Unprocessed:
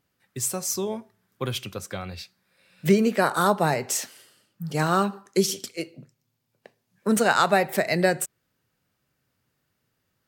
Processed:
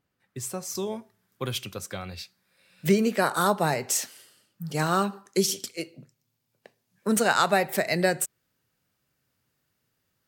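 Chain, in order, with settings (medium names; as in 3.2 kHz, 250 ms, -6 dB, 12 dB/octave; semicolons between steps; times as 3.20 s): treble shelf 3.3 kHz -6.5 dB, from 0.75 s +4 dB; trim -2.5 dB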